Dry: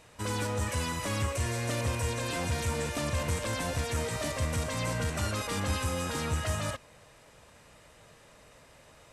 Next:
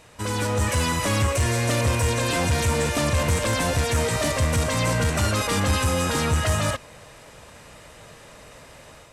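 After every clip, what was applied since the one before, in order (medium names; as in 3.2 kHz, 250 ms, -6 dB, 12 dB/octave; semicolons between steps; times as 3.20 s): level rider gain up to 5 dB; saturation -18.5 dBFS, distortion -20 dB; trim +5.5 dB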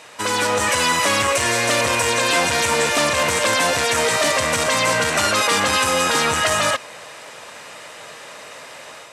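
frequency weighting A; in parallel at -1 dB: peak limiter -21 dBFS, peak gain reduction 7.5 dB; on the sum: trim +4 dB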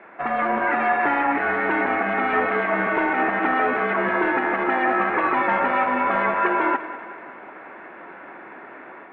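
two-band feedback delay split 570 Hz, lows 136 ms, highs 189 ms, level -13 dB; mistuned SSB -270 Hz 590–2300 Hz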